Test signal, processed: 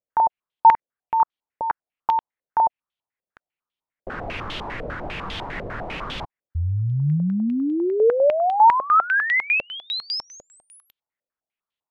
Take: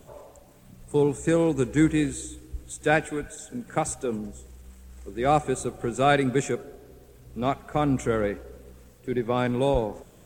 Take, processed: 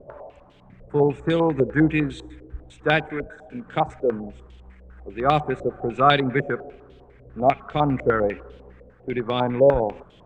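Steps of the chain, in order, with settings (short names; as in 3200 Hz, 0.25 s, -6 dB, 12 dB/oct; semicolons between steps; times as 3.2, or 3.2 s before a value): dynamic EQ 150 Hz, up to +4 dB, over -42 dBFS, Q 7.6; stepped low-pass 10 Hz 560–3300 Hz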